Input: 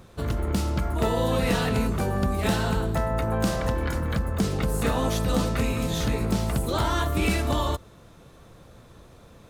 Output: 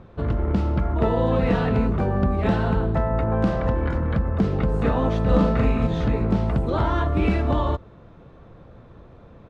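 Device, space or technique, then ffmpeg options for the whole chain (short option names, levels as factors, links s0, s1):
phone in a pocket: -filter_complex "[0:a]lowpass=3300,highshelf=f=2000:g=-11,asplit=3[s0][s1][s2];[s0]afade=t=out:st=5.25:d=0.02[s3];[s1]asplit=2[s4][s5];[s5]adelay=41,volume=0.75[s6];[s4][s6]amix=inputs=2:normalize=0,afade=t=in:st=5.25:d=0.02,afade=t=out:st=5.86:d=0.02[s7];[s2]afade=t=in:st=5.86:d=0.02[s8];[s3][s7][s8]amix=inputs=3:normalize=0,volume=1.58"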